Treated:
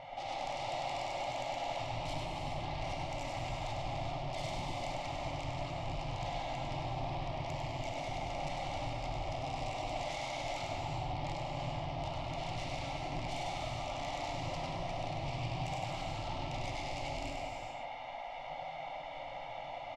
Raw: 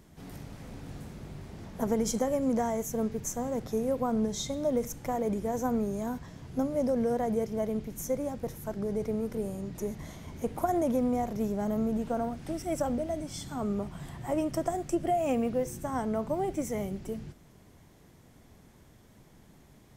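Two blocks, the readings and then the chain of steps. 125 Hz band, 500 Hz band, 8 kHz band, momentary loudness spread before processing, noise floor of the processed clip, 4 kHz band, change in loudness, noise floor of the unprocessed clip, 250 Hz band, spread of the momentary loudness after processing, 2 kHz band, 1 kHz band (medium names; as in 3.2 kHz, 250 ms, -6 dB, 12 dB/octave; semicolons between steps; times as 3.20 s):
0.0 dB, -10.0 dB, -10.5 dB, 14 LU, -44 dBFS, +5.5 dB, -8.0 dB, -57 dBFS, -16.0 dB, 5 LU, +5.0 dB, -1.0 dB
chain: rattle on loud lows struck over -38 dBFS, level -37 dBFS; spectral gate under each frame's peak -15 dB weak; low-pass 2.7 kHz 24 dB/octave; bass shelf 150 Hz +4 dB; comb 1.4 ms, depth 100%; in parallel at +0.5 dB: compressor with a negative ratio -48 dBFS; on the sum: peak limiter -36.5 dBFS, peak gain reduction 14.5 dB; sine folder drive 6 dB, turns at -36.5 dBFS; static phaser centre 300 Hz, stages 8; on a send: delay 100 ms -4.5 dB; on the sum: gated-style reverb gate 460 ms flat, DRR -0.5 dB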